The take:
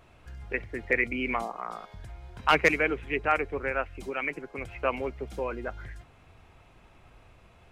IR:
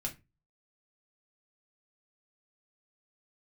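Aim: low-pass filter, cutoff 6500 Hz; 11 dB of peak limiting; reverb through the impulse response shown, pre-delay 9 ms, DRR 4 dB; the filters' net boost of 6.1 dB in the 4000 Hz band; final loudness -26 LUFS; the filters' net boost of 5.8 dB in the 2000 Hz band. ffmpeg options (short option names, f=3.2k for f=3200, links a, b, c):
-filter_complex "[0:a]lowpass=6.5k,equalizer=f=2k:t=o:g=5,equalizer=f=4k:t=o:g=7,alimiter=limit=-13.5dB:level=0:latency=1,asplit=2[a][b];[1:a]atrim=start_sample=2205,adelay=9[c];[b][c]afir=irnorm=-1:irlink=0,volume=-4.5dB[d];[a][d]amix=inputs=2:normalize=0,volume=1dB"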